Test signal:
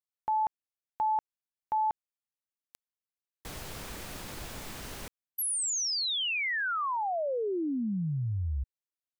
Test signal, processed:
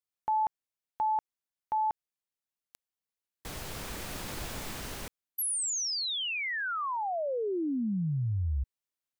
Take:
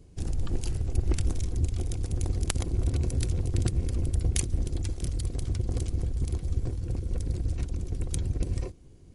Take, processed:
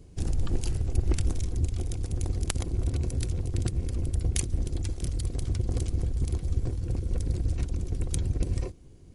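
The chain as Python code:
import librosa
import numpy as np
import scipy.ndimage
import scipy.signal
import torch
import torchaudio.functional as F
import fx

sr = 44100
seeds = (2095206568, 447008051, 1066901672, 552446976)

y = fx.rider(x, sr, range_db=4, speed_s=2.0)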